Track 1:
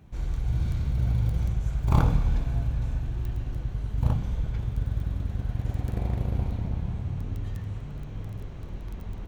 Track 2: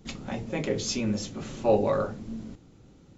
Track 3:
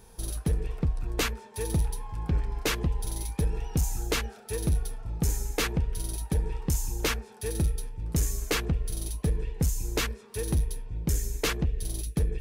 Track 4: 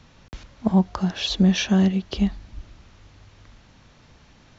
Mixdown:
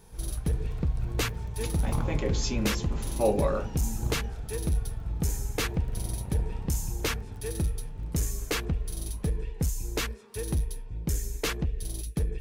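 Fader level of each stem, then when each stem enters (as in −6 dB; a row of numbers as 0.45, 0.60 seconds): −9.0 dB, −2.5 dB, −2.0 dB, muted; 0.00 s, 1.55 s, 0.00 s, muted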